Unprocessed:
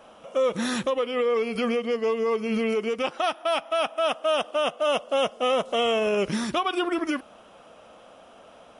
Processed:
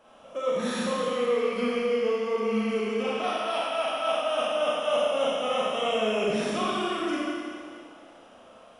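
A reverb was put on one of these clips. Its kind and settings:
four-comb reverb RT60 2.1 s, combs from 29 ms, DRR −6.5 dB
level −9 dB

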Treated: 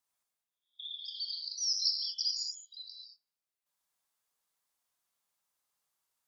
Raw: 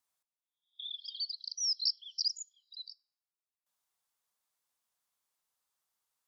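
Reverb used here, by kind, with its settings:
reverb whose tail is shaped and stops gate 250 ms flat, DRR 0 dB
level −1.5 dB

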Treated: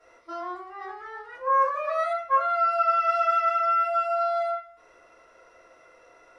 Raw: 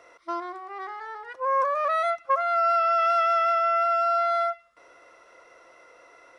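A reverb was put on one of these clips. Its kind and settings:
rectangular room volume 42 cubic metres, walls mixed, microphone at 3.1 metres
level −16 dB

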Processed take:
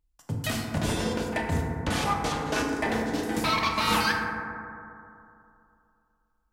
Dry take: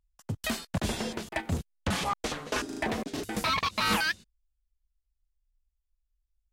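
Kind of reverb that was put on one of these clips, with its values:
feedback delay network reverb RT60 2.7 s, high-frequency decay 0.25×, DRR −1.5 dB

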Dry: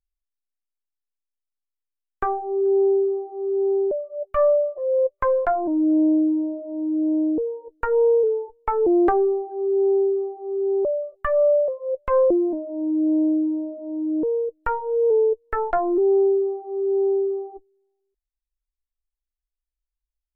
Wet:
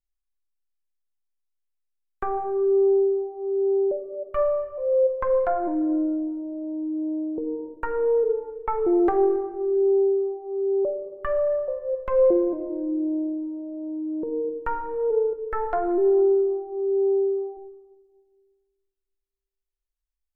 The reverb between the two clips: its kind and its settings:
rectangular room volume 1,600 cubic metres, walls mixed, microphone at 1 metre
level −4.5 dB

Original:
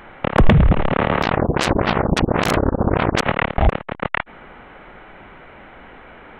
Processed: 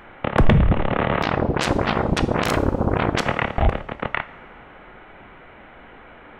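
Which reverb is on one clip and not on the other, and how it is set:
coupled-rooms reverb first 0.51 s, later 2.7 s, from −17 dB, DRR 11 dB
level −3 dB

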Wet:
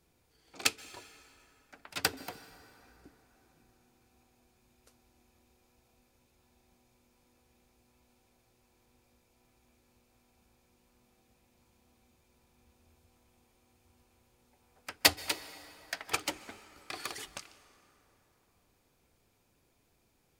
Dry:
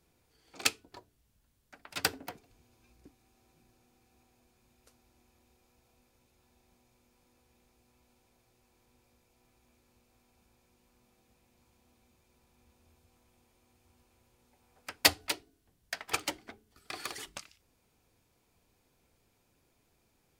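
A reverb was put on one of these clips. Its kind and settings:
dense smooth reverb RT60 3.7 s, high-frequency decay 0.55×, pre-delay 115 ms, DRR 16 dB

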